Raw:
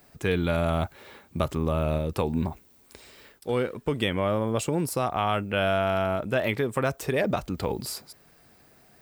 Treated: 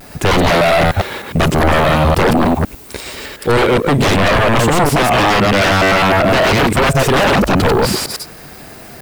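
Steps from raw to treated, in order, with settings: reverse delay 0.102 s, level -1 dB; 4.73–6.6 HPF 66 Hz 24 dB/oct; sine folder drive 17 dB, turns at -8 dBFS; vibrato 0.5 Hz 25 cents; slew limiter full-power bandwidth 660 Hz

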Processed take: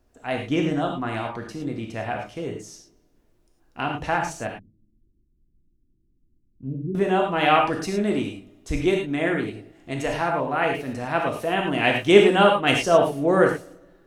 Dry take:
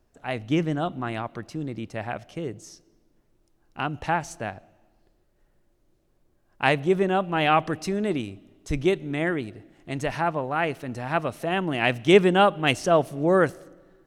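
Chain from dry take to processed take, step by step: 4.47–6.95 inverse Chebyshev low-pass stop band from 720 Hz, stop band 50 dB; non-linear reverb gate 0.13 s flat, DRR 0.5 dB

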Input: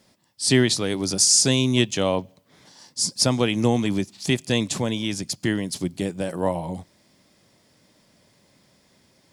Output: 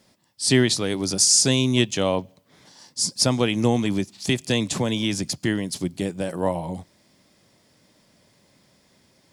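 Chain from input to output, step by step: 4.29–5.38 three-band squash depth 70%

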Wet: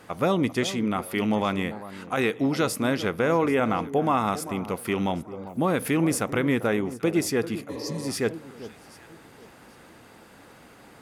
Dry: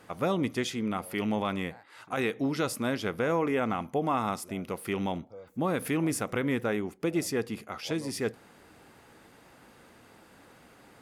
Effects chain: echo with dull and thin repeats by turns 0.393 s, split 1200 Hz, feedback 50%, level -13.5 dB; spectral repair 7.71–7.99, 300–4200 Hz after; gain +5 dB

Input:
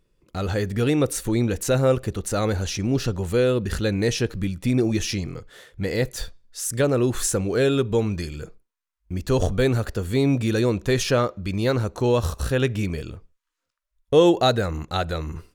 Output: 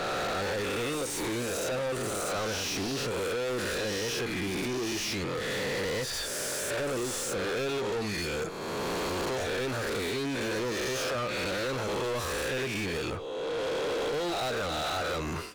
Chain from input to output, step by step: spectral swells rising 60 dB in 1.31 s; compressor 6:1, threshold -31 dBFS, peak gain reduction 20 dB; overdrive pedal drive 33 dB, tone 5300 Hz, clips at -18.5 dBFS; gain -6 dB

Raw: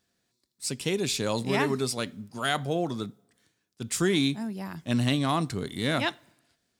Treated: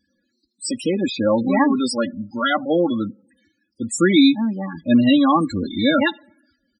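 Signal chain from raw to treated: 0.86–1.71 high shelf 2500 Hz -> 5000 Hz -8 dB; comb 3.6 ms, depth 99%; loudest bins only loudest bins 16; gain +8 dB

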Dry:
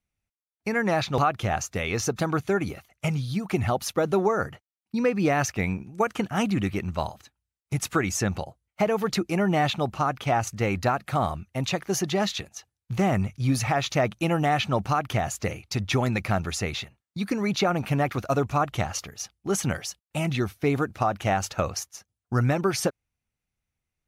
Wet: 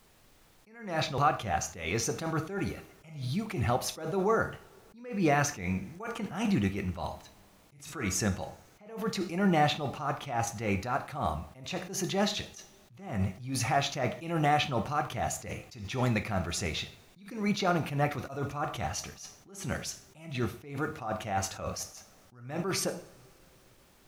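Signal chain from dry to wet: two-slope reverb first 0.47 s, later 3.8 s, from -28 dB, DRR 7.5 dB; added noise pink -58 dBFS; attack slew limiter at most 100 dB/s; gain -3 dB

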